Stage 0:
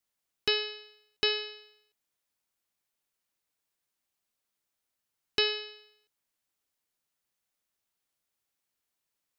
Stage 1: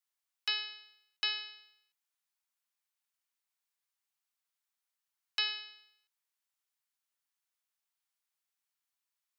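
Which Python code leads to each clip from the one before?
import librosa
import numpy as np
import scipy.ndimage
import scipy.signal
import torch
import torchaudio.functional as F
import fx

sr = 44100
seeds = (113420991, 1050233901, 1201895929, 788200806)

y = scipy.signal.sosfilt(scipy.signal.butter(4, 810.0, 'highpass', fs=sr, output='sos'), x)
y = F.gain(torch.from_numpy(y), -4.5).numpy()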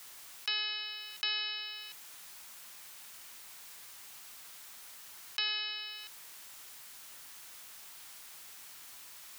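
y = fx.env_flatten(x, sr, amount_pct=70)
y = F.gain(torch.from_numpy(y), -2.5).numpy()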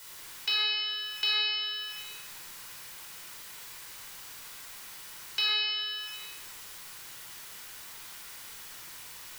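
y = fx.room_shoebox(x, sr, seeds[0], volume_m3=2600.0, walls='mixed', distance_m=4.8)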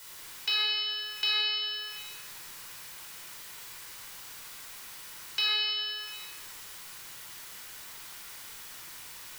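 y = fx.echo_feedback(x, sr, ms=173, feedback_pct=53, wet_db=-14.0)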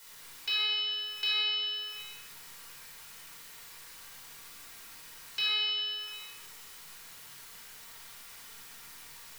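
y = fx.room_shoebox(x, sr, seeds[1], volume_m3=870.0, walls='furnished', distance_m=1.7)
y = F.gain(torch.from_numpy(y), -5.5).numpy()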